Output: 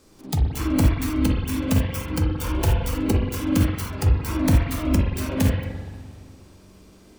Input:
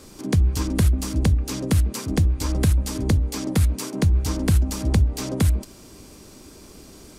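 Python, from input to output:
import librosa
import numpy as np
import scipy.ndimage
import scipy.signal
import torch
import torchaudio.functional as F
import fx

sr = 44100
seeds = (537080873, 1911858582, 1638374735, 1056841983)

y = fx.self_delay(x, sr, depth_ms=0.82)
y = fx.rev_spring(y, sr, rt60_s=2.4, pass_ms=(42, 58), chirp_ms=20, drr_db=-3.5)
y = fx.noise_reduce_blind(y, sr, reduce_db=10)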